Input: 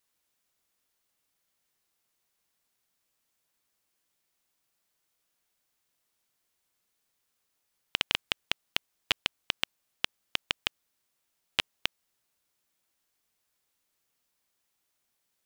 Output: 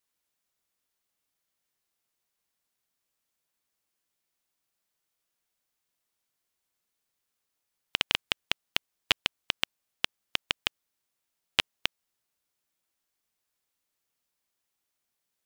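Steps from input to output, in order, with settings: upward expansion 1.5:1, over -39 dBFS; trim +3 dB

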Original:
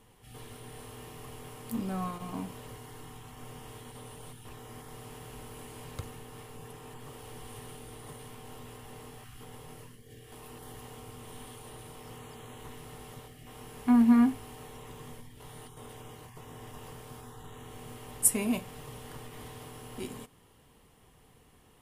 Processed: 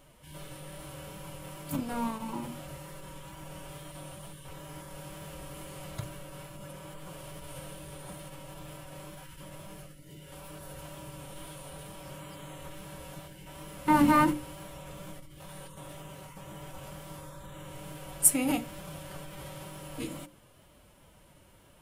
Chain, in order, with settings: wow and flutter 19 cents; formant-preserving pitch shift +4 st; hum notches 60/120/180/240/300/360/420/480/540 Hz; trim +3 dB

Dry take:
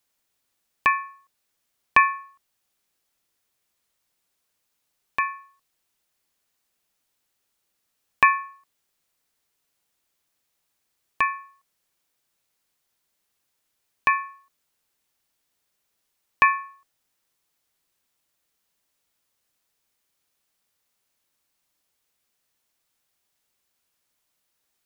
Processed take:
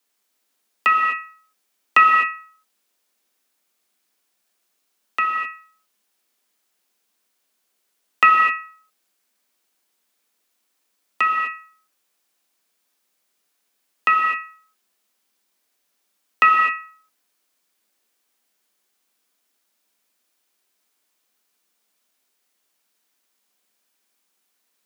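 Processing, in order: gated-style reverb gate 280 ms flat, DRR 1 dB; frequency shift +180 Hz; trim +1.5 dB

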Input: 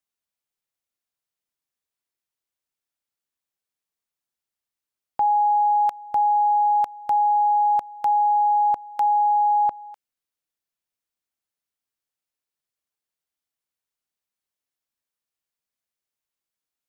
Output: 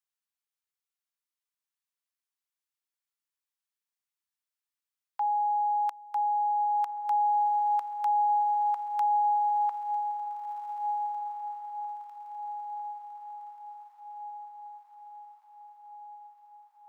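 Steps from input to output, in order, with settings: steep high-pass 840 Hz 36 dB/octave; echo that smears into a reverb 1785 ms, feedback 54%, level -8 dB; trim -5 dB

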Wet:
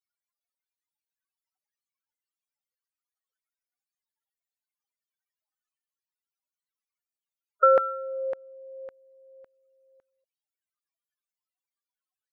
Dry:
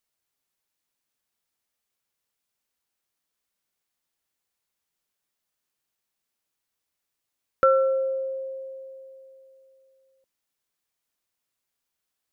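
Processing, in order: loudest bins only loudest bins 16; LFO high-pass saw down 1.8 Hz 630–1600 Hz

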